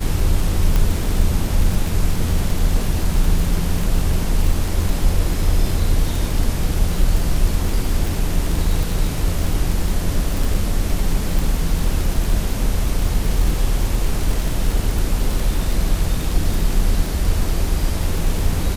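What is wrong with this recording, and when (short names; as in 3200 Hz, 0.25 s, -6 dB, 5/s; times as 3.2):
crackle 44/s -20 dBFS
0.76 pop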